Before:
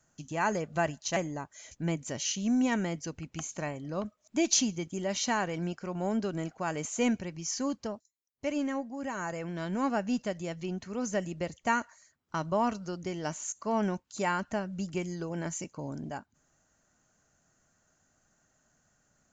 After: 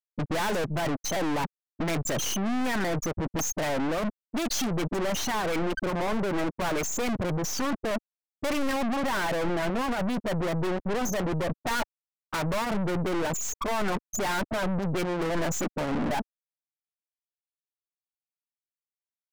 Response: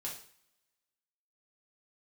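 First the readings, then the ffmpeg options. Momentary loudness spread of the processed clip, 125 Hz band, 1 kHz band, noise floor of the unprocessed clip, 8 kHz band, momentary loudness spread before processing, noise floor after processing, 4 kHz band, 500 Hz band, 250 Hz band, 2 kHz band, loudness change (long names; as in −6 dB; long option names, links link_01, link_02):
3 LU, +5.5 dB, +4.0 dB, −74 dBFS, +1.5 dB, 9 LU, below −85 dBFS, +4.0 dB, +5.0 dB, +2.5 dB, +5.0 dB, +3.5 dB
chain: -filter_complex "[0:a]apsyclip=20dB,afftfilt=real='re*gte(hypot(re,im),0.316)':imag='im*gte(hypot(re,im),0.316)':win_size=1024:overlap=0.75,areverse,acompressor=threshold=-20dB:ratio=6,areverse,asplit=2[link_01][link_02];[link_02]highpass=frequency=720:poles=1,volume=26dB,asoftclip=type=tanh:threshold=-11.5dB[link_03];[link_01][link_03]amix=inputs=2:normalize=0,lowpass=frequency=3000:poles=1,volume=-6dB,asubboost=boost=4.5:cutoff=68,aeval=exprs='(tanh(63.1*val(0)+0.55)-tanh(0.55))/63.1':channel_layout=same,adynamicequalizer=threshold=0.00224:dfrequency=2800:dqfactor=0.7:tfrequency=2800:tqfactor=0.7:attack=5:release=100:ratio=0.375:range=3:mode=cutabove:tftype=highshelf,volume=9dB"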